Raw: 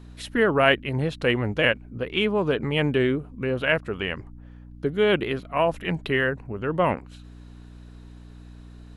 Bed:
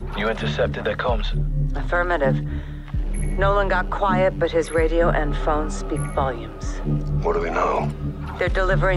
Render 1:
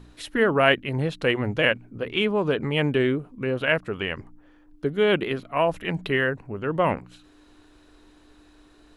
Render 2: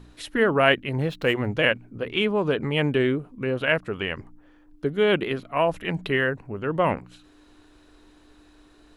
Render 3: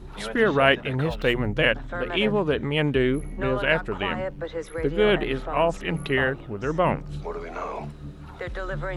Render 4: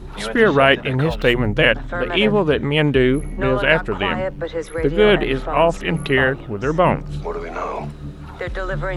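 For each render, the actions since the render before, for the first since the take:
de-hum 60 Hz, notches 4
0.92–1.57 median filter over 5 samples
add bed -11.5 dB
gain +6.5 dB; limiter -1 dBFS, peak gain reduction 3 dB

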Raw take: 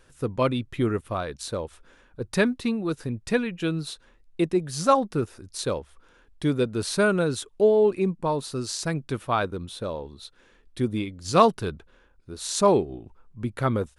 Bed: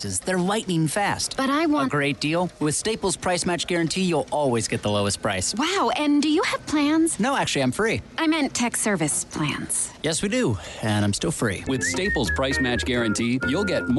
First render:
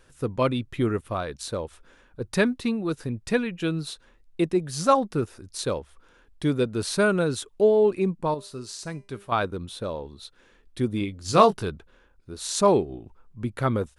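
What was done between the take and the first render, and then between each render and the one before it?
8.34–9.32 resonator 200 Hz, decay 0.35 s; 10.99–11.63 doubler 20 ms -7 dB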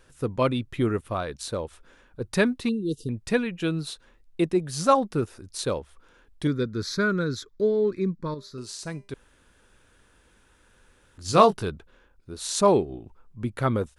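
2.69–3.09 brick-wall FIR band-stop 500–2700 Hz; 6.47–8.58 fixed phaser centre 2800 Hz, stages 6; 9.14–11.18 room tone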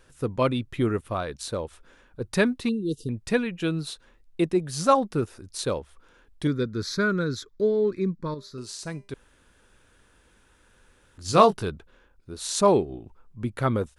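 nothing audible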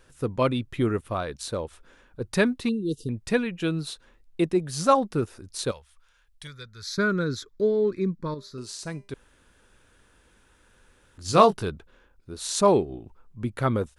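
5.71–6.98 passive tone stack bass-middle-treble 10-0-10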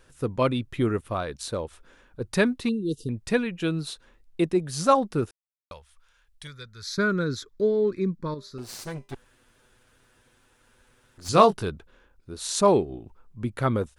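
5.31–5.71 mute; 8.58–11.29 minimum comb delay 8 ms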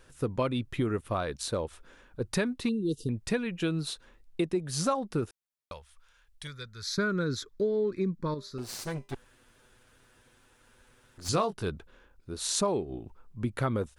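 compressor 6:1, threshold -25 dBFS, peak gain reduction 14 dB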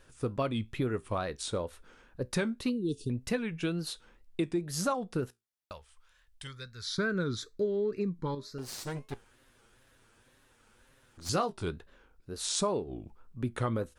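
resonator 59 Hz, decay 0.2 s, harmonics all, mix 40%; wow and flutter 130 cents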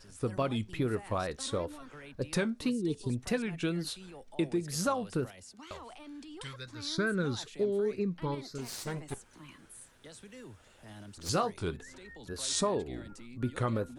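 add bed -27 dB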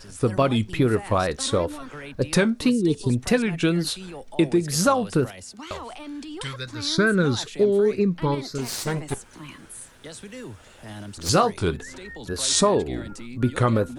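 gain +11 dB

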